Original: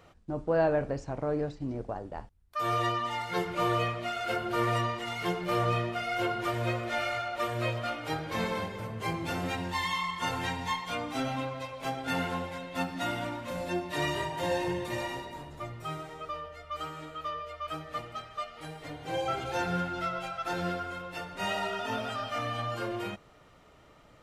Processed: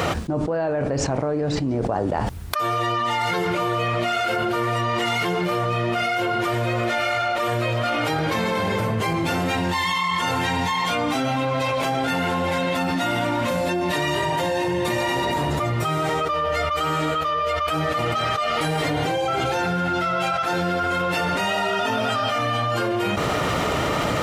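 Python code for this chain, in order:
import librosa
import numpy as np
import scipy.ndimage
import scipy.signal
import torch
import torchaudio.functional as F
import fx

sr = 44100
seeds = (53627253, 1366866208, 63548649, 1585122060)

y = scipy.signal.sosfilt(scipy.signal.butter(2, 80.0, 'highpass', fs=sr, output='sos'), x)
y = fx.env_flatten(y, sr, amount_pct=100)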